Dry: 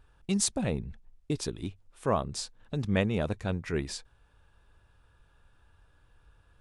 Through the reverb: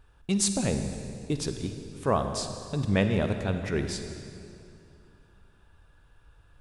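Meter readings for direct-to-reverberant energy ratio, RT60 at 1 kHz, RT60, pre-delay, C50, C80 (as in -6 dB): 6.5 dB, 2.4 s, 2.6 s, 39 ms, 7.0 dB, 7.5 dB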